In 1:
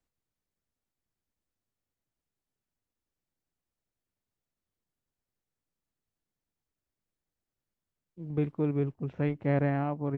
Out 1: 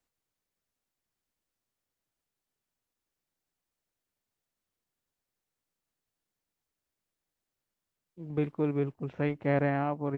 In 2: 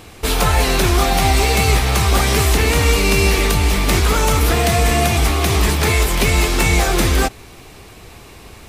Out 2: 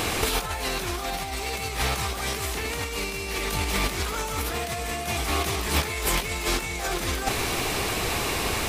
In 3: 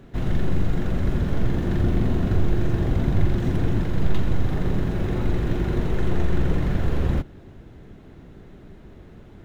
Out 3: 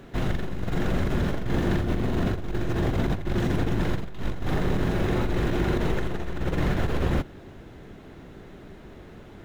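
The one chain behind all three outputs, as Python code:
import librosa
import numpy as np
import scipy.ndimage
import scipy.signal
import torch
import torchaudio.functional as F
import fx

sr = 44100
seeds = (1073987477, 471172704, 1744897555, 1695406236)

y = fx.low_shelf(x, sr, hz=280.0, db=-8.0)
y = fx.over_compress(y, sr, threshold_db=-27.0, ratio=-0.5)
y = F.gain(torch.from_numpy(y), 3.5).numpy()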